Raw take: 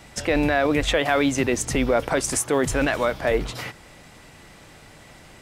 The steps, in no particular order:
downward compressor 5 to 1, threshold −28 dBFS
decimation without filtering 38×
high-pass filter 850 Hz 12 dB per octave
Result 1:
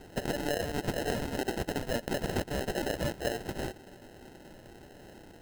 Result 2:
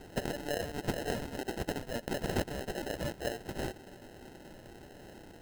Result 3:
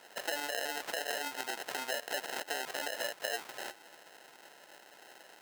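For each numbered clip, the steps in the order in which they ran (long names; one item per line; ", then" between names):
high-pass filter, then decimation without filtering, then downward compressor
downward compressor, then high-pass filter, then decimation without filtering
decimation without filtering, then downward compressor, then high-pass filter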